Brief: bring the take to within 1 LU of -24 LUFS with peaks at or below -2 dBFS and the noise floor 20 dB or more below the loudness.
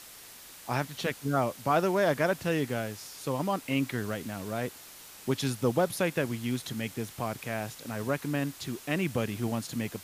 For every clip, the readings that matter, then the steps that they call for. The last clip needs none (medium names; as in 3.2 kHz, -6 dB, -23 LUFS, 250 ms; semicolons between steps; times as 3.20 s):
noise floor -49 dBFS; noise floor target -51 dBFS; loudness -31.0 LUFS; peak level -13.5 dBFS; loudness target -24.0 LUFS
-> noise reduction 6 dB, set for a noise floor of -49 dBFS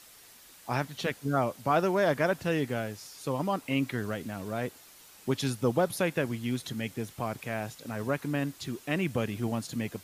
noise floor -54 dBFS; loudness -31.5 LUFS; peak level -13.5 dBFS; loudness target -24.0 LUFS
-> trim +7.5 dB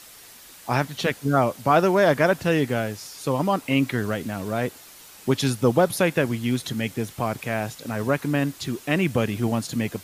loudness -24.0 LUFS; peak level -6.0 dBFS; noise floor -46 dBFS